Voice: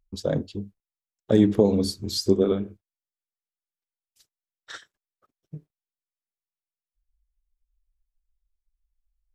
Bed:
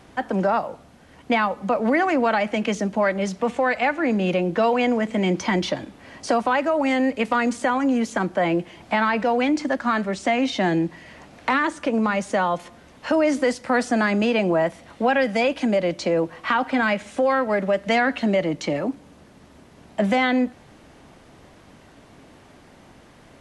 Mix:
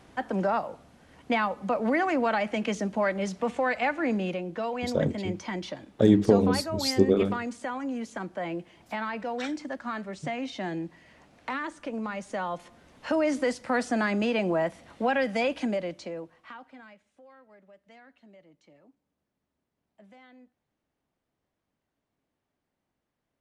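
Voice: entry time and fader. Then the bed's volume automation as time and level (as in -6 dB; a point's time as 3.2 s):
4.70 s, -1.0 dB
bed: 4.14 s -5.5 dB
4.42 s -12 dB
12.17 s -12 dB
13.11 s -6 dB
15.61 s -6 dB
17.11 s -34 dB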